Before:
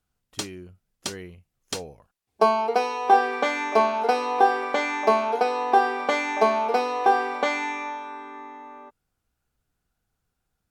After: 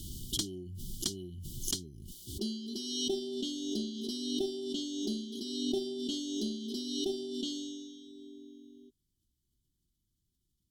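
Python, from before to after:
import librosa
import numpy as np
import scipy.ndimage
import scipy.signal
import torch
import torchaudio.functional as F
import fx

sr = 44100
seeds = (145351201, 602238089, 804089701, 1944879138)

y = fx.brickwall_bandstop(x, sr, low_hz=400.0, high_hz=2900.0)
y = fx.cheby_harmonics(y, sr, harmonics=(2,), levels_db=(-12,), full_scale_db=-14.5)
y = fx.pre_swell(y, sr, db_per_s=36.0)
y = F.gain(torch.from_numpy(y), -2.5).numpy()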